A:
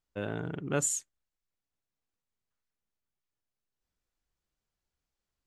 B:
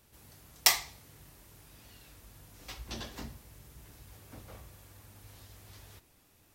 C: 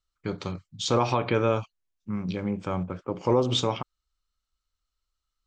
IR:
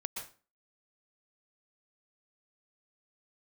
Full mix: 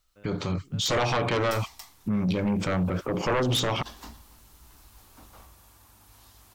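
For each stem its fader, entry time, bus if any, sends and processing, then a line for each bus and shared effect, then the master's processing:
2.67 s -19.5 dB -> 3.06 s -9.5 dB, 0.00 s, no bus, no send, no echo send, word length cut 10-bit, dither triangular
-4.0 dB, 0.85 s, bus A, no send, echo send -20 dB, graphic EQ 125/500/1000/2000 Hz -12/-8/+6/-5 dB; level rider gain up to 5.5 dB
-5.5 dB, 0.00 s, bus A, no send, no echo send, level rider gain up to 10 dB; sine folder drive 11 dB, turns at -2 dBFS
bus A: 0.0 dB, peak limiter -15 dBFS, peak gain reduction 11.5 dB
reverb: none
echo: delay 282 ms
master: peak limiter -20.5 dBFS, peak gain reduction 6 dB

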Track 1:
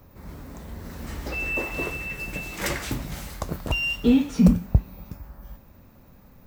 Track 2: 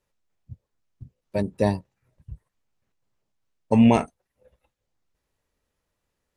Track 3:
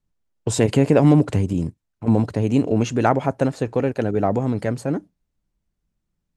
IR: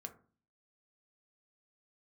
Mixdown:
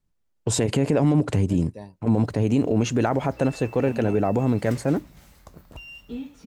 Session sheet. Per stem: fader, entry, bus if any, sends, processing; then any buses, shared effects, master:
-16.0 dB, 2.05 s, no send, none
-18.5 dB, 0.15 s, no send, none
+1.0 dB, 0.00 s, no send, peak limiter -12 dBFS, peak gain reduction 9 dB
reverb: none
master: none

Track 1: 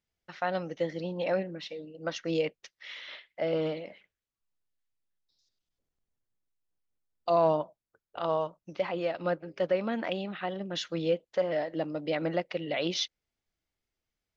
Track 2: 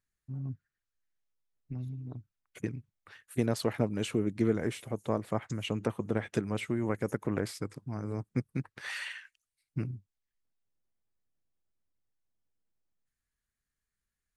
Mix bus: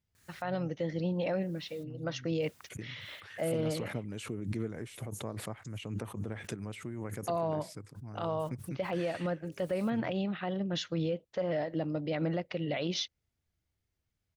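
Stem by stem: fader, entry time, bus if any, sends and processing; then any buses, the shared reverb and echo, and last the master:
-2.0 dB, 0.00 s, no send, none
-11.0 dB, 0.15 s, no send, high-pass 320 Hz 6 dB/octave; treble shelf 3.8 kHz +3 dB; swell ahead of each attack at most 45 dB/s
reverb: none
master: peaking EQ 93 Hz +14.5 dB 2 oct; peak limiter -23.5 dBFS, peak gain reduction 9 dB

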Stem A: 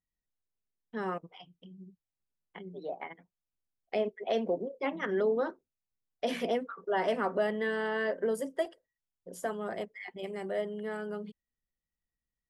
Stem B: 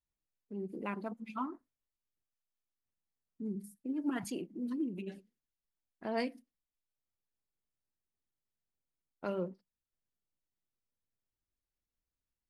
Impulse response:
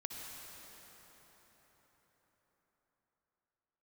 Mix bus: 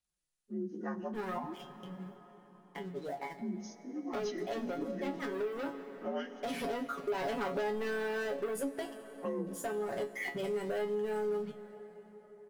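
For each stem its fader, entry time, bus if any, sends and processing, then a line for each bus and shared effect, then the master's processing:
+2.0 dB, 0.20 s, send -14 dB, bass shelf 350 Hz +7.5 dB; waveshaping leveller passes 3; feedback comb 140 Hz, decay 0.2 s, harmonics all, mix 90%; auto duck -9 dB, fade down 1.20 s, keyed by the second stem
-1.0 dB, 0.00 s, send -9 dB, frequency axis rescaled in octaves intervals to 85%; comb 5.6 ms, depth 84%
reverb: on, RT60 5.1 s, pre-delay 53 ms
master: treble shelf 7.4 kHz +7.5 dB; compression 3:1, threshold -34 dBFS, peak gain reduction 10 dB

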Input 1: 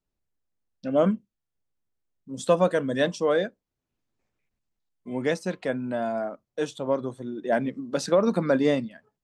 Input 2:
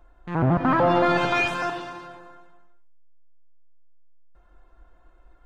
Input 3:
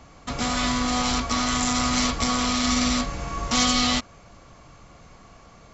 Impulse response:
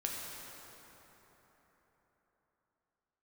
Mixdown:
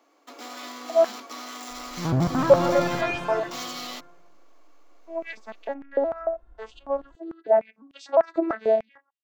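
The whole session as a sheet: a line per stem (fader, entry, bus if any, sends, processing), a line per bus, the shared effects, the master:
-2.5 dB, 0.00 s, no send, vocoder on a broken chord major triad, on A3, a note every 355 ms; step-sequenced high-pass 6.7 Hz 480–2900 Hz
-7.5 dB, 1.70 s, no send, none
-13.5 dB, 0.00 s, no send, median filter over 5 samples; elliptic high-pass 290 Hz, stop band 50 dB; treble shelf 4.5 kHz +5.5 dB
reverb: none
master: bass shelf 470 Hz +7 dB

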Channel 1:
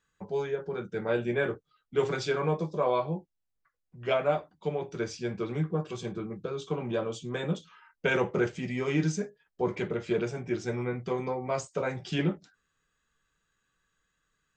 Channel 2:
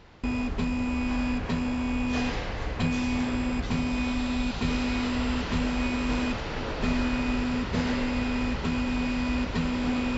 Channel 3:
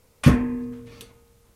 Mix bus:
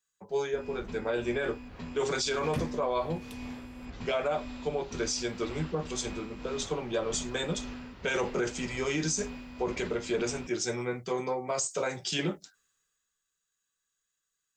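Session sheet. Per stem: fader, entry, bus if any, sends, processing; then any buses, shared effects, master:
+2.5 dB, 0.00 s, no send, tone controls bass -8 dB, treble +14 dB; three bands expanded up and down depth 40%
-12.5 dB, 0.30 s, no send, tremolo 1.9 Hz, depth 48%
-5.5 dB, 2.30 s, no send, compression 1.5:1, threshold -40 dBFS, peak gain reduction 11.5 dB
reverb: none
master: peak limiter -21 dBFS, peak gain reduction 11.5 dB

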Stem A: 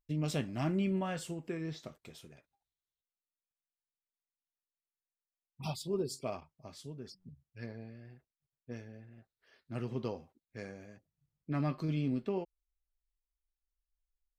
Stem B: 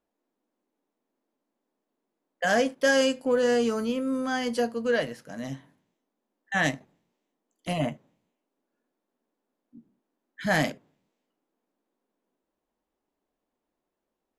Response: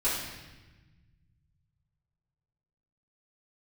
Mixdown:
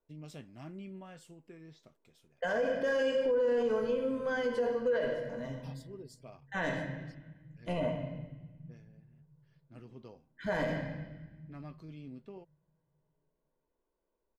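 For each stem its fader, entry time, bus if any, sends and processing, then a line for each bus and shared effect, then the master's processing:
-13.5 dB, 0.00 s, no send, none
-6.0 dB, 0.00 s, send -8 dB, low-pass 1.1 kHz 6 dB/octave; comb 2 ms, depth 57%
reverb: on, RT60 1.2 s, pre-delay 3 ms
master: peak limiter -23 dBFS, peak gain reduction 11 dB

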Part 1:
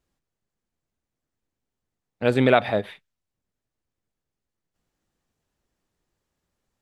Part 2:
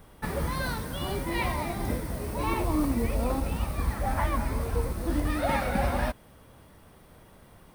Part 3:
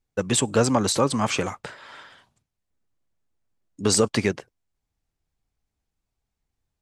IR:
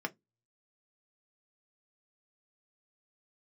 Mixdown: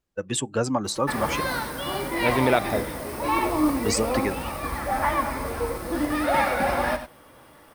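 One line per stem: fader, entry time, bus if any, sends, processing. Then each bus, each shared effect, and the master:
-3.5 dB, 0.00 s, no send, no echo send, none
+2.0 dB, 0.85 s, send -5 dB, echo send -7 dB, bass shelf 200 Hz -11 dB
-4.0 dB, 0.00 s, send -13 dB, no echo send, expander on every frequency bin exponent 1.5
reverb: on, RT60 0.15 s, pre-delay 3 ms
echo: delay 94 ms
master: none

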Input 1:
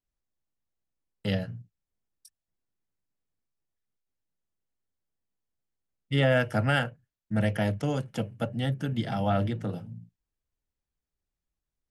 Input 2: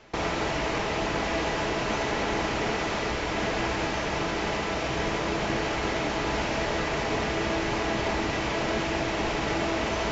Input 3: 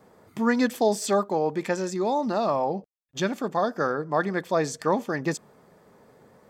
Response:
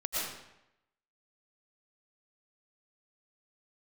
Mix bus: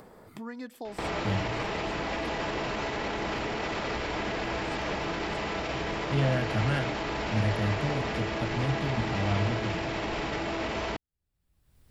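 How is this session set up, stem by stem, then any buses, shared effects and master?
-8.5 dB, 0.00 s, no send, no echo send, peaking EQ 95 Hz +10 dB 1.9 oct
+2.0 dB, 0.85 s, no send, no echo send, peak limiter -25.5 dBFS, peak gain reduction 10 dB
-20.0 dB, 0.00 s, no send, echo send -14 dB, none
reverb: none
echo: feedback delay 584 ms, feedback 53%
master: peaking EQ 6.3 kHz -6.5 dB 0.32 oct; upward compressor, threshold -33 dBFS

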